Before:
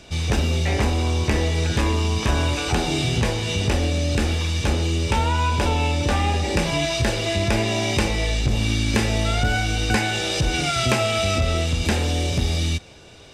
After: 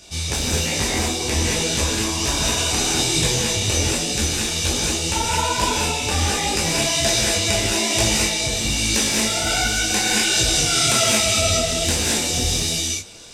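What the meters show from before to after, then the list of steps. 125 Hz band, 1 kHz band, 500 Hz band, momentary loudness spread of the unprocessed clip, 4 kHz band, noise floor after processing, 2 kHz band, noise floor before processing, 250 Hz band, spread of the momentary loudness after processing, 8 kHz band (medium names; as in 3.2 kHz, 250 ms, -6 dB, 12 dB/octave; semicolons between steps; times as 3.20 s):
-5.0 dB, +0.5 dB, 0.0 dB, 2 LU, +7.0 dB, -25 dBFS, +2.5 dB, -31 dBFS, -1.0 dB, 5 LU, +13.0 dB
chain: tone controls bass -3 dB, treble +14 dB; gated-style reverb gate 250 ms rising, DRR -2.5 dB; detune thickener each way 43 cents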